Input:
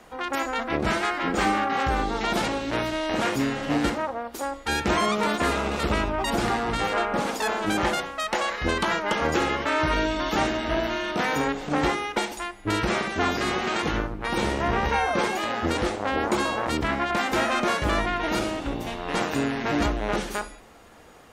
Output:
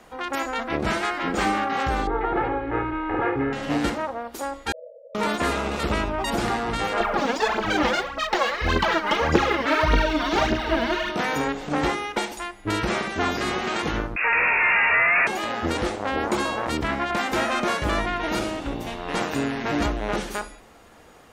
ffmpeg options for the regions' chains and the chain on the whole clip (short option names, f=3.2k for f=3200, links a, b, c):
-filter_complex "[0:a]asettb=1/sr,asplit=3[a][b][c];[a]atrim=end=2.074[d];[b]atrim=start=2.07:end=3.53,asetpts=PTS-STARTPTS,afade=t=in:d=0.004:c=qsin,afade=t=out:st=1.456:d=0.004:c=qsin,lowpass=f=1.9k:w=0.5412,lowpass=f=1.9k:w=1.3066,aecho=1:1:2.4:0.88,atrim=end_sample=64386[e];[c]atrim=start=3.526[f];[d][e]acrossfade=d=0.004:c1=hsin:c2=qsin[g];[g][f]acrossfade=d=0.004:c1=qsin:c2=hsin,asettb=1/sr,asplit=3[h][i][j];[h]atrim=end=4.724[k];[i]atrim=start=4.72:end=5.15,asetpts=PTS-STARTPTS,afade=t=in:d=0.004:c=qsin,afade=t=out:st=0.426:d=0.004:c=qsin,aeval=exprs='(mod(17.8*val(0)+1,2)-1)/17.8':c=same,afreqshift=420,asuperpass=centerf=550:order=20:qfactor=2.9[l];[j]atrim=start=5.146[m];[k][l]acrossfade=d=0.004:c1=hsin:c2=qsin[n];[n][m]acrossfade=d=0.004:c1=qsin:c2=hsin,asettb=1/sr,asplit=3[o][p][q];[o]atrim=end=7.004[r];[p]atrim=start=7:end=11.1,asetpts=PTS-STARTPTS,afade=t=in:d=0.004:c=qsin,afade=t=out:st=4.096:d=0.004:c=qsin,lowpass=f=6.1k:w=0.5412,lowpass=f=6.1k:w=1.3066,aphaser=in_gain=1:out_gain=1:delay=4.4:decay=0.7:speed=1.7:type=triangular[s];[q]atrim=start=11.096[t];[r][s]acrossfade=d=0.004:c1=hsin:c2=qsin[u];[u][t]acrossfade=d=0.004:c1=qsin:c2=hsin,asettb=1/sr,asplit=3[v][w][x];[v]atrim=end=14.164[y];[w]atrim=start=14.16:end=15.27,asetpts=PTS-STARTPTS,afade=t=in:d=0.004:c=qsin,afade=t=out:st=1.106:d=0.004:c=qsin,asplit=2[z][aa];[aa]highpass=f=720:p=1,volume=29dB,asoftclip=type=tanh:threshold=-12.5dB[ab];[z][ab]amix=inputs=2:normalize=0,lowpass=f=2.2k:p=1,volume=-6dB,lowpass=f=2.4k:t=q:w=0.5098,lowpass=f=2.4k:t=q:w=0.6013,lowpass=f=2.4k:t=q:w=0.9,lowpass=f=2.4k:t=q:w=2.563,afreqshift=-2800[ac];[x]atrim=start=15.266[ad];[y][ac]acrossfade=d=0.004:c1=hsin:c2=qsin[ae];[ae][ad]acrossfade=d=0.004:c1=qsin:c2=hsin"